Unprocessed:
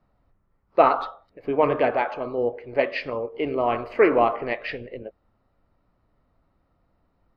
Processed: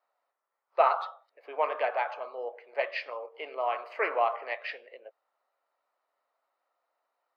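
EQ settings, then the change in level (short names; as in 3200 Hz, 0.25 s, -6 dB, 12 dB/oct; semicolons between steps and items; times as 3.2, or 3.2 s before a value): HPF 590 Hz 24 dB/oct; -5.0 dB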